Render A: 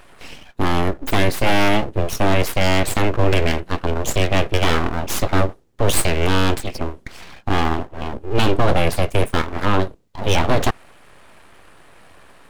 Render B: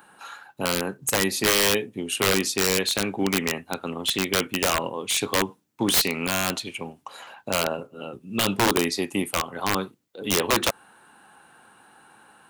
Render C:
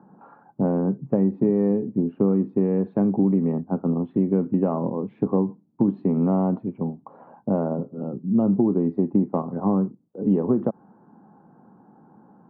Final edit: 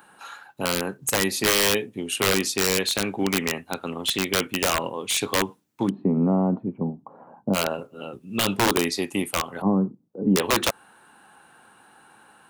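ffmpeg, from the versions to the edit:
-filter_complex "[2:a]asplit=2[a][b];[1:a]asplit=3[c][d][e];[c]atrim=end=5.9[f];[a]atrim=start=5.86:end=7.57[g];[d]atrim=start=7.53:end=9.622[h];[b]atrim=start=9.618:end=10.362[i];[e]atrim=start=10.358[j];[f][g]acrossfade=d=0.04:c1=tri:c2=tri[k];[k][h]acrossfade=d=0.04:c1=tri:c2=tri[l];[l][i]acrossfade=d=0.004:c1=hsin:c2=hsin[m];[m][j]acrossfade=d=0.004:c1=hsin:c2=hsin"

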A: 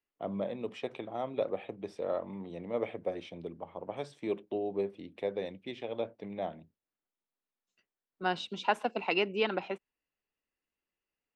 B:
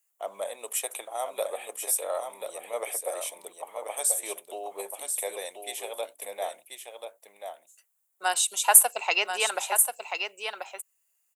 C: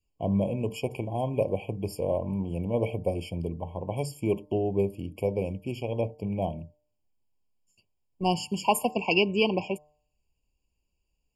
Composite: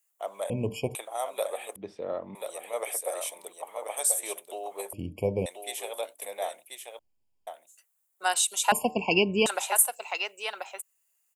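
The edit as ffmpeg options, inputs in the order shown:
-filter_complex "[2:a]asplit=4[a][b][c][d];[1:a]asplit=6[e][f][g][h][i][j];[e]atrim=end=0.502[k];[a]atrim=start=0.498:end=0.952[l];[f]atrim=start=0.948:end=1.762[m];[0:a]atrim=start=1.758:end=2.352[n];[g]atrim=start=2.348:end=4.932[o];[b]atrim=start=4.928:end=5.462[p];[h]atrim=start=5.458:end=6.992[q];[c]atrim=start=6.988:end=7.472[r];[i]atrim=start=7.468:end=8.722[s];[d]atrim=start=8.718:end=9.462[t];[j]atrim=start=9.458[u];[k][l]acrossfade=d=0.004:c1=hsin:c2=hsin[v];[v][m]acrossfade=d=0.004:c1=hsin:c2=hsin[w];[w][n]acrossfade=d=0.004:c1=hsin:c2=hsin[x];[x][o]acrossfade=d=0.004:c1=hsin:c2=hsin[y];[y][p]acrossfade=d=0.004:c1=hsin:c2=hsin[z];[z][q]acrossfade=d=0.004:c1=hsin:c2=hsin[aa];[aa][r]acrossfade=d=0.004:c1=hsin:c2=hsin[ab];[ab][s]acrossfade=d=0.004:c1=hsin:c2=hsin[ac];[ac][t]acrossfade=d=0.004:c1=hsin:c2=hsin[ad];[ad][u]acrossfade=d=0.004:c1=hsin:c2=hsin"

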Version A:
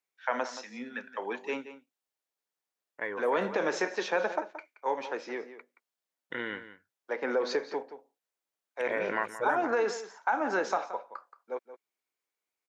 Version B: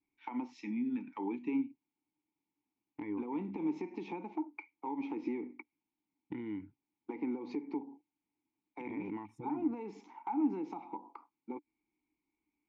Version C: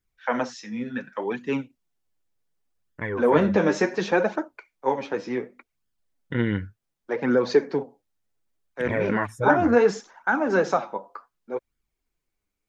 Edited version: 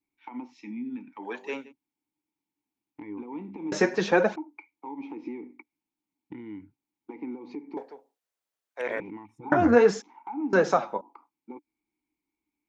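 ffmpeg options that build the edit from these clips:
-filter_complex "[0:a]asplit=2[a][b];[2:a]asplit=3[c][d][e];[1:a]asplit=6[f][g][h][i][j][k];[f]atrim=end=1.3[l];[a]atrim=start=1.2:end=1.73[m];[g]atrim=start=1.63:end=3.722[n];[c]atrim=start=3.718:end=4.362[o];[h]atrim=start=4.358:end=7.772[p];[b]atrim=start=7.768:end=9.002[q];[i]atrim=start=8.998:end=9.522[r];[d]atrim=start=9.518:end=10.022[s];[j]atrim=start=10.018:end=10.532[t];[e]atrim=start=10.528:end=11.012[u];[k]atrim=start=11.008[v];[l][m]acrossfade=d=0.1:c1=tri:c2=tri[w];[w][n]acrossfade=d=0.1:c1=tri:c2=tri[x];[x][o]acrossfade=d=0.004:c1=hsin:c2=hsin[y];[y][p]acrossfade=d=0.004:c1=hsin:c2=hsin[z];[z][q]acrossfade=d=0.004:c1=hsin:c2=hsin[aa];[aa][r]acrossfade=d=0.004:c1=hsin:c2=hsin[ab];[ab][s]acrossfade=d=0.004:c1=hsin:c2=hsin[ac];[ac][t]acrossfade=d=0.004:c1=hsin:c2=hsin[ad];[ad][u]acrossfade=d=0.004:c1=hsin:c2=hsin[ae];[ae][v]acrossfade=d=0.004:c1=hsin:c2=hsin"

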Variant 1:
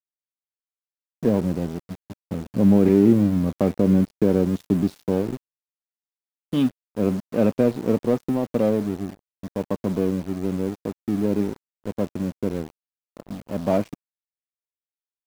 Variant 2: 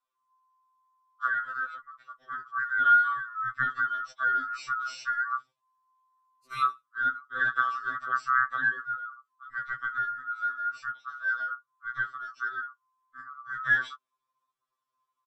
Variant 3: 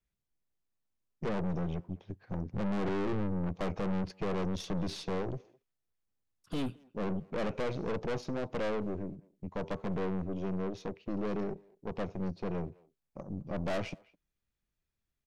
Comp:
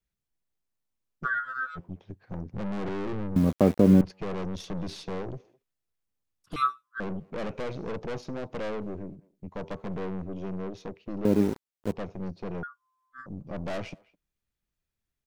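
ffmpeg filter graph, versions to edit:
-filter_complex "[1:a]asplit=3[a][b][c];[0:a]asplit=2[d][e];[2:a]asplit=6[f][g][h][i][j][k];[f]atrim=end=1.27[l];[a]atrim=start=1.23:end=1.79[m];[g]atrim=start=1.75:end=3.362[n];[d]atrim=start=3.358:end=4.012[o];[h]atrim=start=4.008:end=6.562[p];[b]atrim=start=6.558:end=7.002[q];[i]atrim=start=6.998:end=11.252[r];[e]atrim=start=11.248:end=11.922[s];[j]atrim=start=11.918:end=12.632[t];[c]atrim=start=12.628:end=13.262[u];[k]atrim=start=13.258[v];[l][m]acrossfade=d=0.04:c1=tri:c2=tri[w];[w][n]acrossfade=d=0.04:c1=tri:c2=tri[x];[x][o]acrossfade=d=0.004:c1=hsin:c2=hsin[y];[y][p]acrossfade=d=0.004:c1=hsin:c2=hsin[z];[z][q]acrossfade=d=0.004:c1=hsin:c2=hsin[aa];[aa][r]acrossfade=d=0.004:c1=hsin:c2=hsin[ab];[ab][s]acrossfade=d=0.004:c1=hsin:c2=hsin[ac];[ac][t]acrossfade=d=0.004:c1=hsin:c2=hsin[ad];[ad][u]acrossfade=d=0.004:c1=hsin:c2=hsin[ae];[ae][v]acrossfade=d=0.004:c1=hsin:c2=hsin"

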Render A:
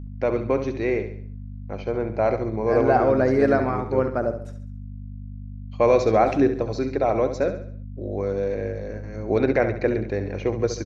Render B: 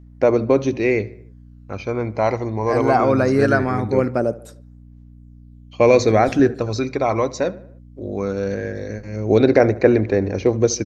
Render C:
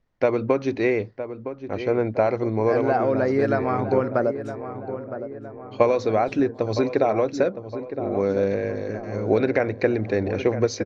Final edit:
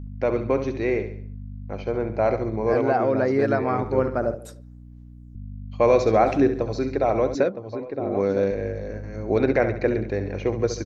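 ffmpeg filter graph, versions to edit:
-filter_complex "[2:a]asplit=2[a][b];[0:a]asplit=4[c][d][e][f];[c]atrim=end=2.752[g];[a]atrim=start=2.748:end=3.832[h];[d]atrim=start=3.828:end=4.352[i];[1:a]atrim=start=4.348:end=5.352[j];[e]atrim=start=5.348:end=7.352[k];[b]atrim=start=7.348:end=8.512[l];[f]atrim=start=8.508[m];[g][h]acrossfade=d=0.004:c1=hsin:c2=hsin[n];[n][i]acrossfade=d=0.004:c1=hsin:c2=hsin[o];[o][j]acrossfade=d=0.004:c1=hsin:c2=hsin[p];[p][k]acrossfade=d=0.004:c1=hsin:c2=hsin[q];[q][l]acrossfade=d=0.004:c1=hsin:c2=hsin[r];[r][m]acrossfade=d=0.004:c1=hsin:c2=hsin"

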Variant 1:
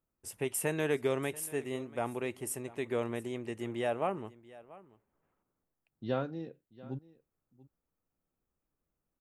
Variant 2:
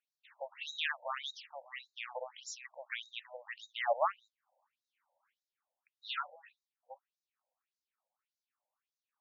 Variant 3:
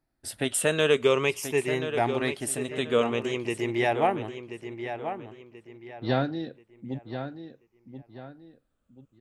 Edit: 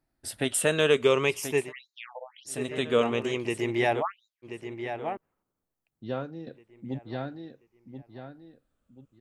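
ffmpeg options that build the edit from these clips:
-filter_complex "[1:a]asplit=2[a][b];[2:a]asplit=4[c][d][e][f];[c]atrim=end=1.73[g];[a]atrim=start=1.57:end=2.61[h];[d]atrim=start=2.45:end=4.03[i];[b]atrim=start=3.99:end=4.46[j];[e]atrim=start=4.42:end=5.172[k];[0:a]atrim=start=5.168:end=6.472[l];[f]atrim=start=6.468[m];[g][h]acrossfade=d=0.16:c1=tri:c2=tri[n];[n][i]acrossfade=d=0.16:c1=tri:c2=tri[o];[o][j]acrossfade=d=0.04:c1=tri:c2=tri[p];[p][k]acrossfade=d=0.04:c1=tri:c2=tri[q];[q][l]acrossfade=d=0.004:c1=hsin:c2=hsin[r];[r][m]acrossfade=d=0.004:c1=hsin:c2=hsin"

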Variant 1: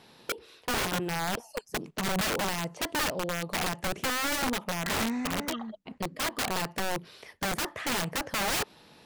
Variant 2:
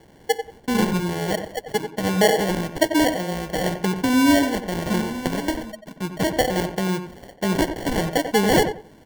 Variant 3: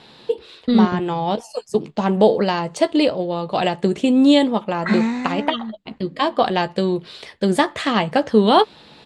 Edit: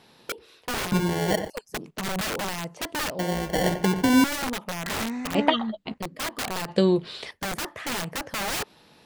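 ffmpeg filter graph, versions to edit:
-filter_complex "[1:a]asplit=2[a][b];[2:a]asplit=2[c][d];[0:a]asplit=5[e][f][g][h][i];[e]atrim=end=0.922[j];[a]atrim=start=0.918:end=1.502[k];[f]atrim=start=1.498:end=3.192[l];[b]atrim=start=3.188:end=4.242[m];[g]atrim=start=4.238:end=5.352[n];[c]atrim=start=5.348:end=5.942[o];[h]atrim=start=5.938:end=6.682[p];[d]atrim=start=6.678:end=7.312[q];[i]atrim=start=7.308[r];[j][k]acrossfade=d=0.004:c1=hsin:c2=hsin[s];[s][l]acrossfade=d=0.004:c1=hsin:c2=hsin[t];[t][m]acrossfade=d=0.004:c1=hsin:c2=hsin[u];[u][n]acrossfade=d=0.004:c1=hsin:c2=hsin[v];[v][o]acrossfade=d=0.004:c1=hsin:c2=hsin[w];[w][p]acrossfade=d=0.004:c1=hsin:c2=hsin[x];[x][q]acrossfade=d=0.004:c1=hsin:c2=hsin[y];[y][r]acrossfade=d=0.004:c1=hsin:c2=hsin"

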